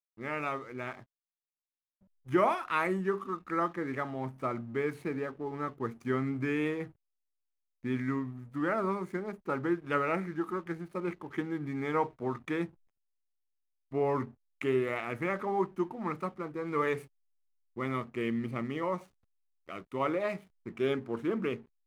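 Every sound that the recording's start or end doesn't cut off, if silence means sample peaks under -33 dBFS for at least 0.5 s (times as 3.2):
2.32–6.84
7.85–12.65
13.94–16.98
17.78–18.97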